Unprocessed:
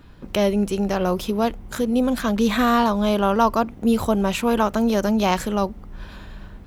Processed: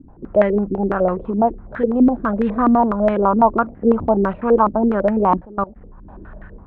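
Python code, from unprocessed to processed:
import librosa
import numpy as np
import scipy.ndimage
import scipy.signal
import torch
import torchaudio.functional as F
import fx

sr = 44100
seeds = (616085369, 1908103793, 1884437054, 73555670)

y = fx.level_steps(x, sr, step_db=20, at=(5.39, 6.08), fade=0.02)
y = fx.air_absorb(y, sr, metres=370.0)
y = fx.filter_held_lowpass(y, sr, hz=12.0, low_hz=280.0, high_hz=1800.0)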